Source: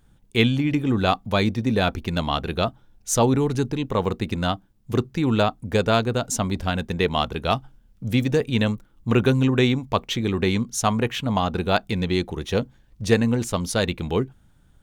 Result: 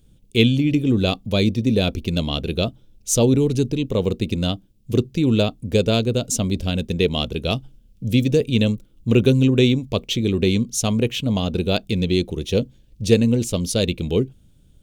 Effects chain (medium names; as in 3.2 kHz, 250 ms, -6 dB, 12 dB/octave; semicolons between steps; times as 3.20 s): high-order bell 1.2 kHz -14 dB; trim +3.5 dB